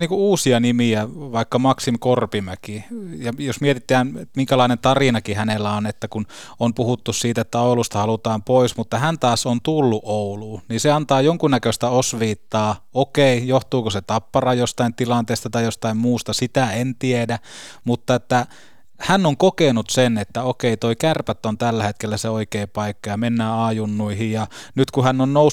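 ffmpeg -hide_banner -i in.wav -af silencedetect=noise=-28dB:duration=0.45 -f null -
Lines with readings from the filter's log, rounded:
silence_start: 18.45
silence_end: 19.01 | silence_duration: 0.56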